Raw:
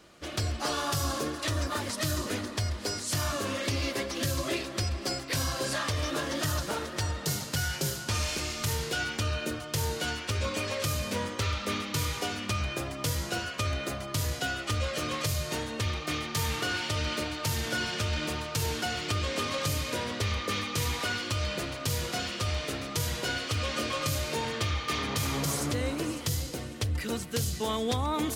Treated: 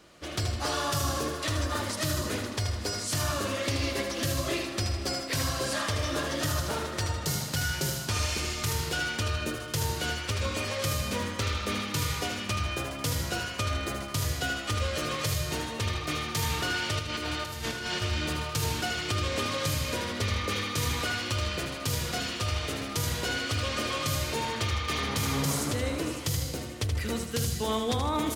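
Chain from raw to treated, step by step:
0:16.99–0:18.02: compressor whose output falls as the input rises −34 dBFS, ratio −0.5
on a send: repeating echo 78 ms, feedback 44%, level −6.5 dB

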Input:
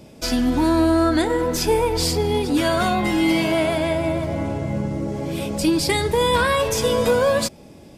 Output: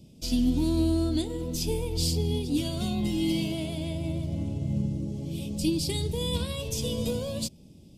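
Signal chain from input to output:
drawn EQ curve 180 Hz 0 dB, 1,700 Hz −27 dB, 2,900 Hz −5 dB
expander for the loud parts 1.5 to 1, over −29 dBFS

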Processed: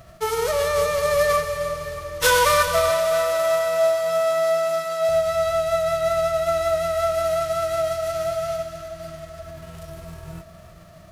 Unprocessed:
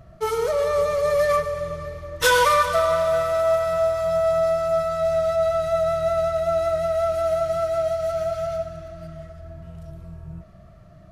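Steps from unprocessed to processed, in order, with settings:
spectral envelope flattened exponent 0.6
0:02.90–0:05.09: high-pass filter 190 Hz 24 dB per octave
echo with a time of its own for lows and highs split 820 Hz, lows 435 ms, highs 311 ms, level −13 dB

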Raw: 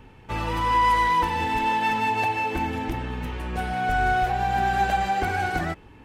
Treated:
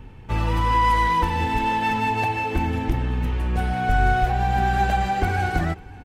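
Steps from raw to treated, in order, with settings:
low-shelf EQ 180 Hz +10.5 dB
single-tap delay 542 ms −23.5 dB

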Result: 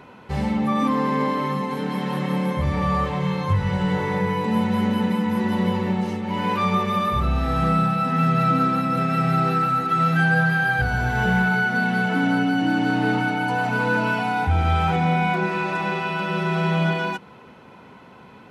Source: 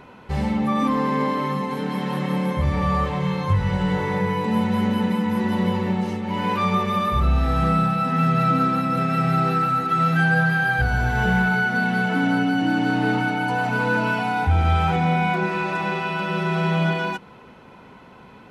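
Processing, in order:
high-pass filter 70 Hz

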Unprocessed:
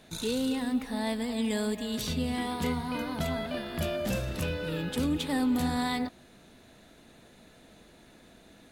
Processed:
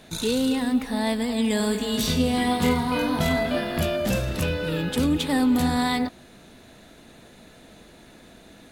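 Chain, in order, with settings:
0:01.58–0:03.81: reverse bouncing-ball delay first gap 20 ms, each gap 1.5×, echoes 5
level +6.5 dB

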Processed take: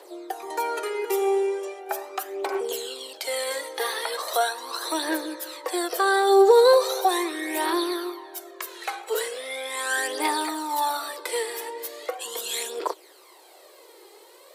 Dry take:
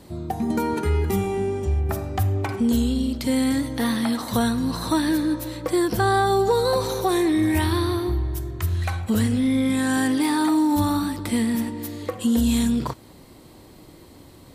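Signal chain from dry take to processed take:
Butterworth high-pass 360 Hz 72 dB per octave
phase shifter 0.39 Hz, delay 2.5 ms, feedback 54%

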